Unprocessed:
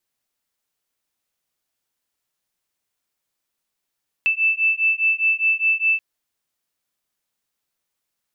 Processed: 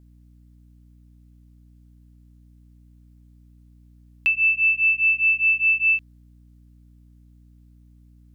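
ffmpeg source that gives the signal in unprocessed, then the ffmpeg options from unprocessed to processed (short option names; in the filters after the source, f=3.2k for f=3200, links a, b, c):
-f lavfi -i "aevalsrc='0.106*(sin(2*PI*2640*t)+sin(2*PI*2644.9*t))':d=1.73:s=44100"
-af "aeval=exprs='val(0)+0.00316*(sin(2*PI*60*n/s)+sin(2*PI*2*60*n/s)/2+sin(2*PI*3*60*n/s)/3+sin(2*PI*4*60*n/s)/4+sin(2*PI*5*60*n/s)/5)':c=same"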